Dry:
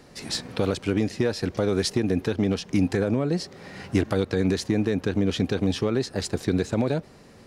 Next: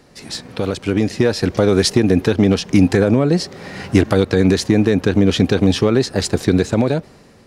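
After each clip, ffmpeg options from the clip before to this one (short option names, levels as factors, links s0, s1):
-af "dynaudnorm=f=380:g=5:m=3.55,volume=1.12"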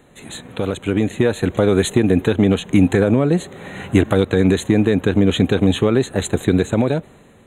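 -af "asuperstop=centerf=5100:order=12:qfactor=2.2,volume=0.891"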